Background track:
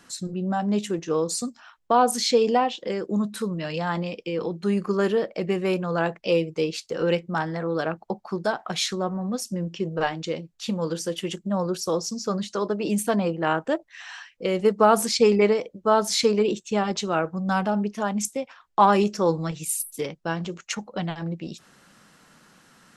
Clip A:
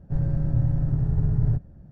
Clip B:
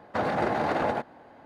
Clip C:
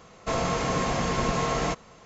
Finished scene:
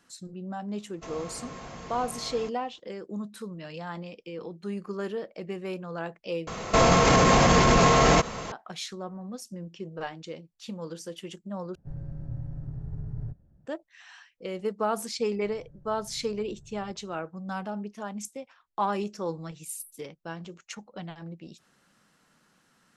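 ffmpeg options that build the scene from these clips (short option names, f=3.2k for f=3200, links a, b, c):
-filter_complex "[3:a]asplit=2[a][b];[1:a]asplit=2[c][d];[0:a]volume=-10.5dB[e];[b]alimiter=level_in=25dB:limit=-1dB:release=50:level=0:latency=1[f];[d]acompressor=threshold=-33dB:ratio=6:attack=3.2:release=140:knee=1:detection=peak[g];[e]asplit=3[h][i][j];[h]atrim=end=6.474[k];[f]atrim=end=2.05,asetpts=PTS-STARTPTS,volume=-9.5dB[l];[i]atrim=start=8.516:end=11.754[m];[c]atrim=end=1.91,asetpts=PTS-STARTPTS,volume=-13.5dB[n];[j]atrim=start=13.656[o];[a]atrim=end=2.05,asetpts=PTS-STARTPTS,volume=-15.5dB,afade=t=in:d=0.004:c=hsin,afade=t=out:st=2.046:d=0.004:c=hsin,adelay=750[p];[g]atrim=end=1.91,asetpts=PTS-STARTPTS,volume=-17dB,afade=t=in:d=0.004:c=hsin,afade=t=out:st=1.906:d=0.004:c=hsin,adelay=15340[q];[k][l]acrossfade=d=0.004:c1=hsin:c2=hsin[r];[r][m]acrossfade=d=0.004:c1=hsin:c2=hsin[s];[s][n]acrossfade=d=0.004:c1=hsin:c2=hsin[t];[t][o]acrossfade=d=0.004:c1=hsin:c2=hsin[u];[u][p][q]amix=inputs=3:normalize=0"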